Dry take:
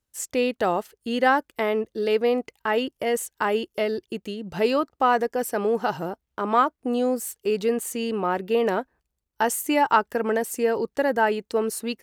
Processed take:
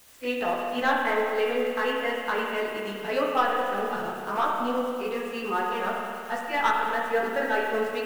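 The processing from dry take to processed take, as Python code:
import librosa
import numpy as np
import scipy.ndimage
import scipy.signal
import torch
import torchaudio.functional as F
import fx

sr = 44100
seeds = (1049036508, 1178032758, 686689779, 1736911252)

p1 = scipy.signal.sosfilt(scipy.signal.butter(2, 1900.0, 'lowpass', fs=sr, output='sos'), x)
p2 = fx.tilt_shelf(p1, sr, db=-9.0, hz=1100.0)
p3 = fx.leveller(p2, sr, passes=2)
p4 = fx.quant_dither(p3, sr, seeds[0], bits=6, dither='triangular')
p5 = p3 + (p4 * librosa.db_to_amplitude(-5.0))
p6 = fx.chorus_voices(p5, sr, voices=4, hz=0.29, base_ms=18, depth_ms=2.3, mix_pct=45)
p7 = fx.stretch_grains(p6, sr, factor=0.67, grain_ms=199.0)
p8 = fx.rev_spring(p7, sr, rt60_s=2.3, pass_ms=(30, 49), chirp_ms=55, drr_db=-1.0)
y = p8 * librosa.db_to_amplitude(-8.5)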